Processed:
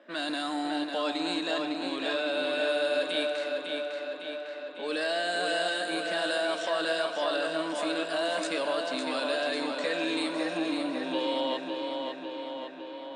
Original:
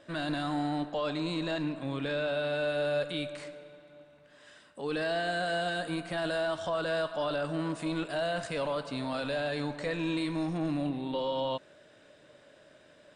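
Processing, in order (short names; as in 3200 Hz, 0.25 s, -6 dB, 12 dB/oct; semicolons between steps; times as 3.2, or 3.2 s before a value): low-pass opened by the level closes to 1900 Hz, open at -28.5 dBFS; elliptic high-pass 210 Hz, stop band 50 dB; high shelf 2400 Hz +9.5 dB; tape echo 0.553 s, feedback 71%, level -3.5 dB, low-pass 5200 Hz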